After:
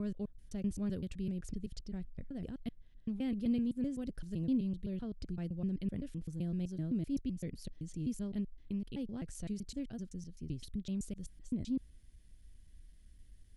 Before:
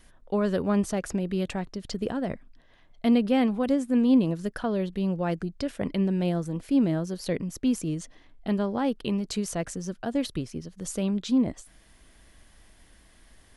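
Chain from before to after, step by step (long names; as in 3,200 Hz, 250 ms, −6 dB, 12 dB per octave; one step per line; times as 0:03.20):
slices reordered back to front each 128 ms, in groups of 4
guitar amp tone stack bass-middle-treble 10-0-1
level +6.5 dB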